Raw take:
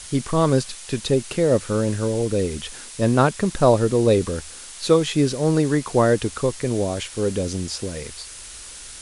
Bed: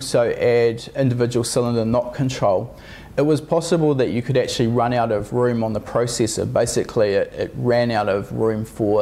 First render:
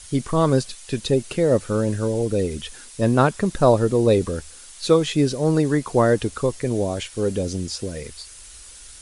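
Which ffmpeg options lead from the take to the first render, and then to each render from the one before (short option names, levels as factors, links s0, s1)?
-af "afftdn=nr=7:nf=-39"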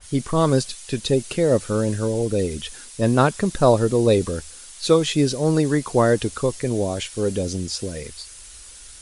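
-af "adynamicequalizer=threshold=0.02:dfrequency=2700:dqfactor=0.7:tfrequency=2700:tqfactor=0.7:attack=5:release=100:ratio=0.375:range=2:mode=boostabove:tftype=highshelf"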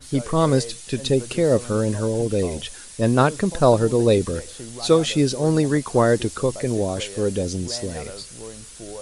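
-filter_complex "[1:a]volume=0.112[s0];[0:a][s0]amix=inputs=2:normalize=0"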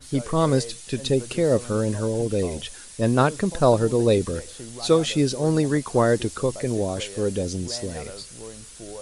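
-af "volume=0.794"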